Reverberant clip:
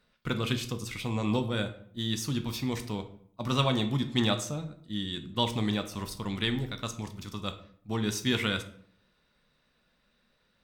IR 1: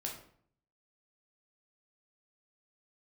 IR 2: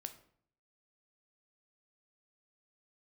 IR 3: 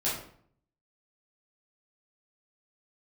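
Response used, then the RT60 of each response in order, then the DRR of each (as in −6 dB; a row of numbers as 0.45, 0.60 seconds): 2; 0.60, 0.60, 0.60 seconds; −1.0, 8.0, −9.0 decibels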